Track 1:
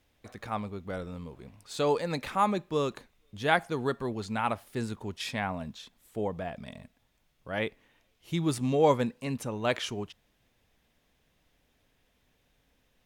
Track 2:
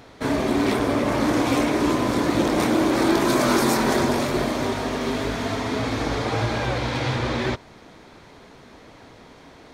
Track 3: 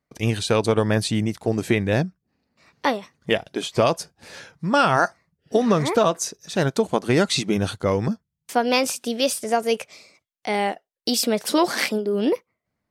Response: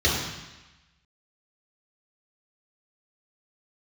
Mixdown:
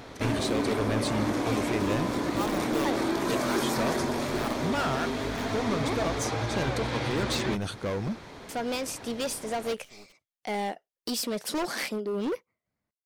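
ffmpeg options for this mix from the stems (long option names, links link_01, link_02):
-filter_complex "[0:a]acrusher=bits=5:dc=4:mix=0:aa=0.000001,volume=-6dB,asplit=3[link_01][link_02][link_03];[link_01]atrim=end=6.21,asetpts=PTS-STARTPTS,afade=type=out:start_time=6.206:duration=0.004:curve=hsin[link_04];[link_02]atrim=start=6.21:end=9.09,asetpts=PTS-STARTPTS,volume=0[link_05];[link_03]atrim=start=9.09,asetpts=PTS-STARTPTS,afade=type=in:duration=0.004:curve=hsin[link_06];[link_04][link_05][link_06]concat=n=3:v=0:a=1[link_07];[1:a]acompressor=threshold=-36dB:ratio=2,volume=2dB[link_08];[2:a]alimiter=limit=-9.5dB:level=0:latency=1:release=415,volume=20.5dB,asoftclip=hard,volume=-20.5dB,volume=-6dB,asplit=2[link_09][link_10];[link_10]apad=whole_len=575824[link_11];[link_07][link_11]sidechaincompress=threshold=-43dB:ratio=6:attack=16:release=542[link_12];[link_12][link_08][link_09]amix=inputs=3:normalize=0"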